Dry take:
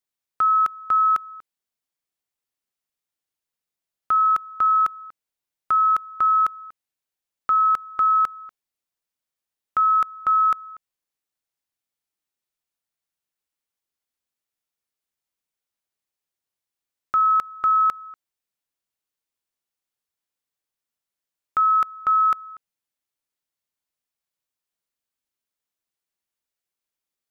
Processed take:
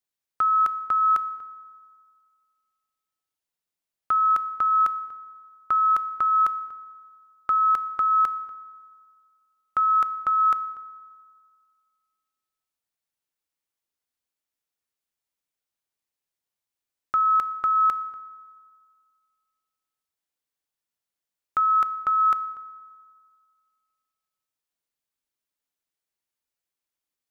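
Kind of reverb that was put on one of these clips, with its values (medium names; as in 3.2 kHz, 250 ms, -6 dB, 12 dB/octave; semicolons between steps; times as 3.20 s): FDN reverb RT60 1.9 s, low-frequency decay 0.95×, high-frequency decay 0.5×, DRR 13.5 dB; trim -1.5 dB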